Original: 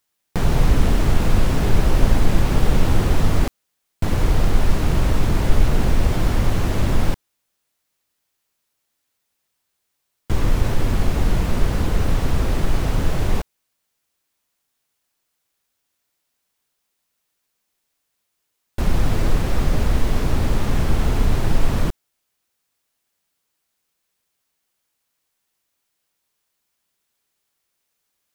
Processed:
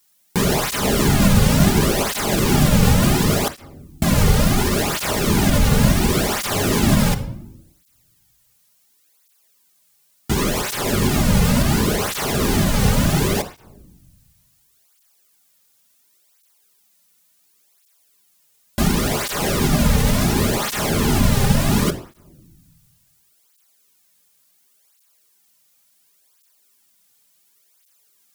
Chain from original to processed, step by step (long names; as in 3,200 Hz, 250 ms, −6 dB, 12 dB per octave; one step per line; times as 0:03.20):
high-shelf EQ 4,300 Hz +11 dB
in parallel at +2 dB: brickwall limiter −10.5 dBFS, peak gain reduction 9.5 dB
on the sum: rectangular room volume 2,400 cubic metres, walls furnished, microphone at 1.3 metres
through-zero flanger with one copy inverted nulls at 0.7 Hz, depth 3.2 ms
level +1 dB